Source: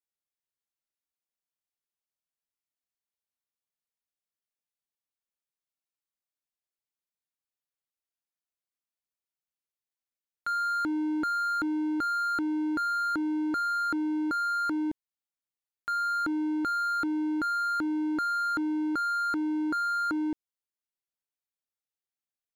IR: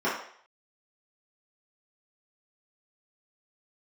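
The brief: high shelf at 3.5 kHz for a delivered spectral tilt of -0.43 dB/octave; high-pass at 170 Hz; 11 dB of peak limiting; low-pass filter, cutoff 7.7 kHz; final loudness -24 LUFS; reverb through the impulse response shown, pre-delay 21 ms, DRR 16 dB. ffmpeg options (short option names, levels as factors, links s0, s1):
-filter_complex "[0:a]highpass=170,lowpass=7700,highshelf=f=3500:g=3.5,alimiter=level_in=2.82:limit=0.0631:level=0:latency=1,volume=0.355,asplit=2[s0][s1];[1:a]atrim=start_sample=2205,adelay=21[s2];[s1][s2]afir=irnorm=-1:irlink=0,volume=0.0335[s3];[s0][s3]amix=inputs=2:normalize=0,volume=4.22"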